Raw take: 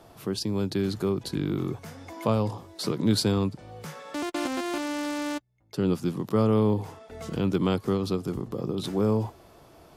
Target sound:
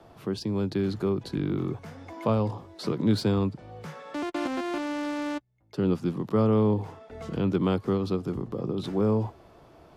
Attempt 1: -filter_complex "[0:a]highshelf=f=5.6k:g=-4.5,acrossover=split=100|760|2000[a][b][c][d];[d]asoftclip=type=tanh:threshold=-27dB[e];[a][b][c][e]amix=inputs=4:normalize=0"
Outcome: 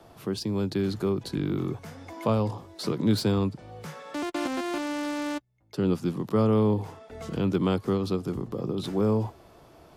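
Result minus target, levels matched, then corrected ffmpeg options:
8000 Hz band +5.5 dB
-filter_complex "[0:a]highshelf=f=5.6k:g=-14.5,acrossover=split=100|760|2000[a][b][c][d];[d]asoftclip=type=tanh:threshold=-27dB[e];[a][b][c][e]amix=inputs=4:normalize=0"

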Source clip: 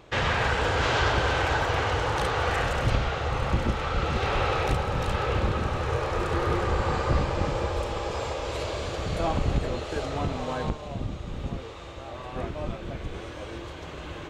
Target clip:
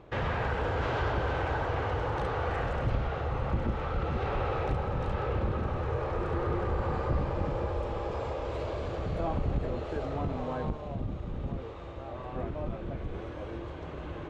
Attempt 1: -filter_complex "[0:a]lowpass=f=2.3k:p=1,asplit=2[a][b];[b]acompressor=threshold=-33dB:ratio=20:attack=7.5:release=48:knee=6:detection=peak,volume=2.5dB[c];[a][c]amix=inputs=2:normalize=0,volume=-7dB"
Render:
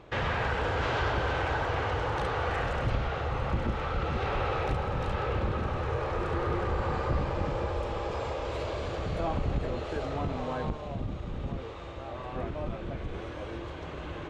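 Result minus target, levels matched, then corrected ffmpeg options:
2000 Hz band +3.0 dB
-filter_complex "[0:a]lowpass=f=970:p=1,asplit=2[a][b];[b]acompressor=threshold=-33dB:ratio=20:attack=7.5:release=48:knee=6:detection=peak,volume=2.5dB[c];[a][c]amix=inputs=2:normalize=0,volume=-7dB"

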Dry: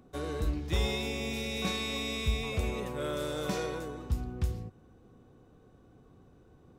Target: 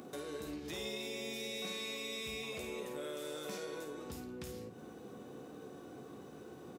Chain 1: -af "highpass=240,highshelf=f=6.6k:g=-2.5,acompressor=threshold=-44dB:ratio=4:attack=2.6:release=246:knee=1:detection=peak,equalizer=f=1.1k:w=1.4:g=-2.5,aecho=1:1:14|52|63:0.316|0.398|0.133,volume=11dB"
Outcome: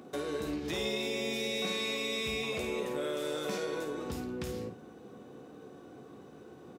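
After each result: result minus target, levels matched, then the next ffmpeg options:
compressor: peak gain reduction -8.5 dB; 8000 Hz band -4.5 dB
-af "highpass=240,highshelf=f=6.6k:g=-2.5,acompressor=threshold=-54.5dB:ratio=4:attack=2.6:release=246:knee=1:detection=peak,equalizer=f=1.1k:w=1.4:g=-2.5,aecho=1:1:14|52|63:0.316|0.398|0.133,volume=11dB"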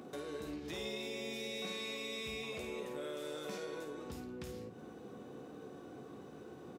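8000 Hz band -3.5 dB
-af "highpass=240,highshelf=f=6.6k:g=5.5,acompressor=threshold=-54.5dB:ratio=4:attack=2.6:release=246:knee=1:detection=peak,equalizer=f=1.1k:w=1.4:g=-2.5,aecho=1:1:14|52|63:0.316|0.398|0.133,volume=11dB"

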